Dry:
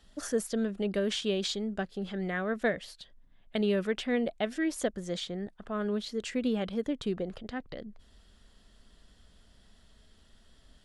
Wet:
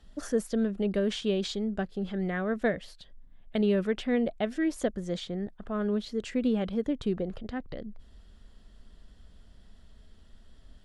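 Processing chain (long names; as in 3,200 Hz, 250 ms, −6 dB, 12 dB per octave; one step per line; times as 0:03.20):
spectral tilt −1.5 dB per octave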